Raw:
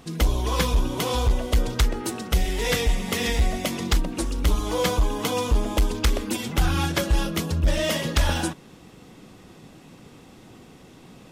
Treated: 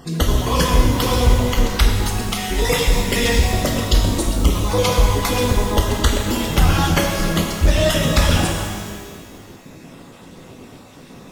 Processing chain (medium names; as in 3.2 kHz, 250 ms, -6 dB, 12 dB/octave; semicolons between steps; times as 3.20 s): random holes in the spectrogram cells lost 32%; pitch-shifted reverb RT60 1.7 s, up +12 st, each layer -8 dB, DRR 1 dB; trim +5.5 dB